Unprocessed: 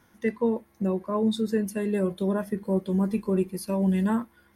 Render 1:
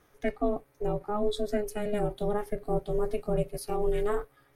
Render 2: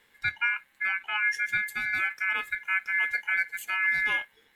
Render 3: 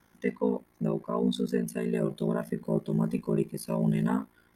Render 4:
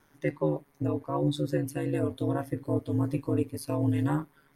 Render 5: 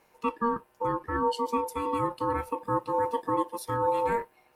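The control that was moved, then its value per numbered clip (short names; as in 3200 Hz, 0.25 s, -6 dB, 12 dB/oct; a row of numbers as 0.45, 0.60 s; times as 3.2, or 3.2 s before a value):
ring modulator, frequency: 210, 1900, 28, 75, 700 Hz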